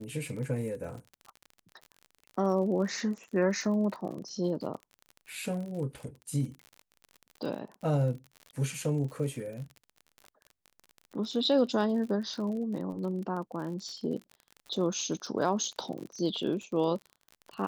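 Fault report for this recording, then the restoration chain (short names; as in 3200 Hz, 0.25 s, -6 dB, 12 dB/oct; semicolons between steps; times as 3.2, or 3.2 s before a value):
crackle 46/s -38 dBFS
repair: de-click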